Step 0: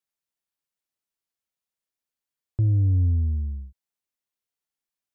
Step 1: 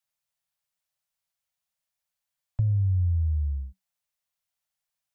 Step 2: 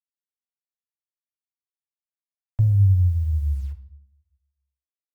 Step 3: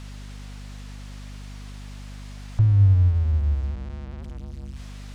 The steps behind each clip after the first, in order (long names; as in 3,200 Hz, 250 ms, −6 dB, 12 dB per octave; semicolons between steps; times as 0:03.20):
Chebyshev band-stop filter 190–530 Hz, order 5; downward compressor 3 to 1, threshold −27 dBFS, peak gain reduction 6 dB; level +3.5 dB
bit-depth reduction 10 bits, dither none; convolution reverb RT60 0.65 s, pre-delay 3 ms, DRR 5.5 dB; level +3 dB
converter with a step at zero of −31.5 dBFS; mains hum 50 Hz, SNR 14 dB; high-frequency loss of the air 91 metres